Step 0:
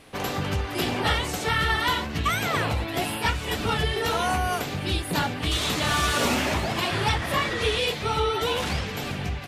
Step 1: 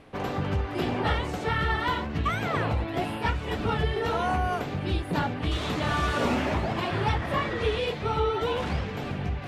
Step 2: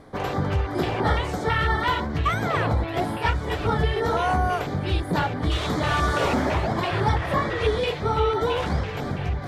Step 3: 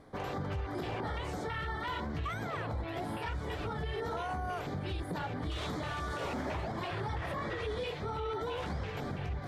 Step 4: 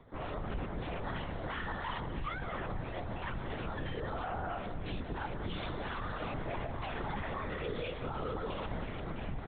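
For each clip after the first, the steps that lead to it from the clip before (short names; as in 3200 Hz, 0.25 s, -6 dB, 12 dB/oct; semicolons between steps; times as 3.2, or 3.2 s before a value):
LPF 1300 Hz 6 dB/oct; reverse; upward compressor, threshold -33 dBFS; reverse
LFO notch square 3 Hz 230–2700 Hz; gain +4.5 dB
limiter -20 dBFS, peak gain reduction 10 dB; gain -8.5 dB
LPC vocoder at 8 kHz whisper; echo 0.18 s -12.5 dB; gain -1.5 dB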